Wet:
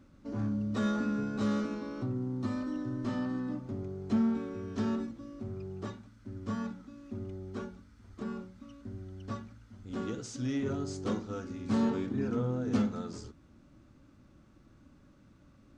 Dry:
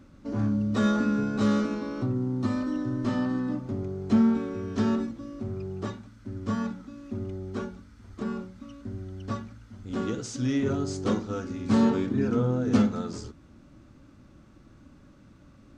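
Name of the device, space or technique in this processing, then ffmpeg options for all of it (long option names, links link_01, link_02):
parallel distortion: -filter_complex "[0:a]asplit=2[link_01][link_02];[link_02]asoftclip=type=hard:threshold=-24dB,volume=-12.5dB[link_03];[link_01][link_03]amix=inputs=2:normalize=0,volume=-8dB"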